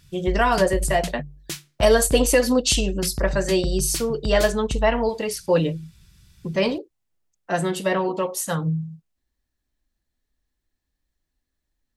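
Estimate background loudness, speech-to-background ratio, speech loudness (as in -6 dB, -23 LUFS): -31.0 LUFS, 9.0 dB, -22.0 LUFS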